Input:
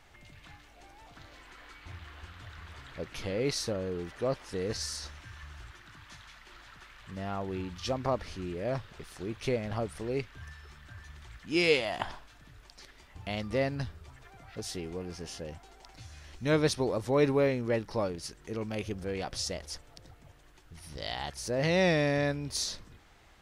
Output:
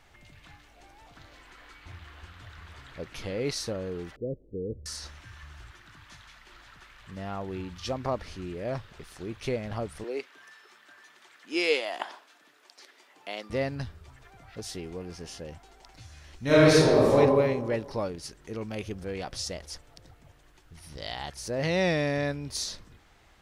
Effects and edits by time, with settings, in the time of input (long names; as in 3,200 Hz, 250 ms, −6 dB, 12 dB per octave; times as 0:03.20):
0:04.16–0:04.86: Butterworth low-pass 510 Hz 48 dB per octave
0:10.04–0:13.50: high-pass filter 300 Hz 24 dB per octave
0:16.44–0:17.16: thrown reverb, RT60 1.4 s, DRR −9 dB